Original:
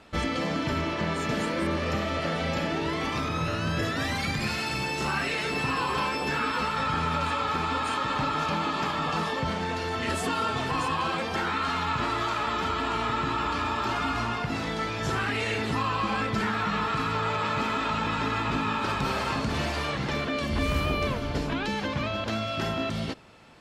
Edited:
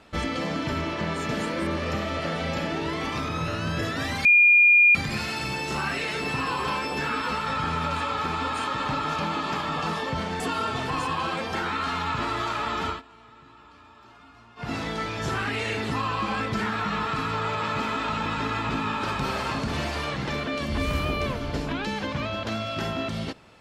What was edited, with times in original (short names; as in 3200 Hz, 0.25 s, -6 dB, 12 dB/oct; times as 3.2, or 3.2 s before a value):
4.25 add tone 2420 Hz -12.5 dBFS 0.70 s
9.7–10.21 cut
12.7–14.5 dip -23 dB, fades 0.13 s